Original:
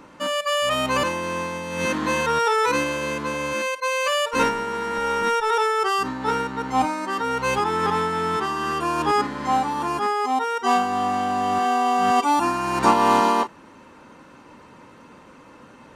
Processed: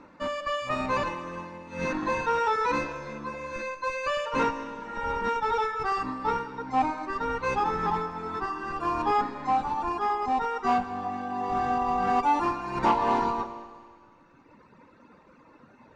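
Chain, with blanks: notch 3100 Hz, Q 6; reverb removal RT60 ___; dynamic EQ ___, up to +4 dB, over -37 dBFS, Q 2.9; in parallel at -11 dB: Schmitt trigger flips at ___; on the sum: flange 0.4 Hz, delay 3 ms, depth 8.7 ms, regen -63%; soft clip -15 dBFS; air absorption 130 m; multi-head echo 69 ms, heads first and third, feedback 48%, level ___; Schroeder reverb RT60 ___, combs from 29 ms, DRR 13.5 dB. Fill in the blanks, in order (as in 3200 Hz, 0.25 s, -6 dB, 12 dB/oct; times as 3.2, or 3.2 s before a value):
2 s, 870 Hz, -19.5 dBFS, -18 dB, 2.4 s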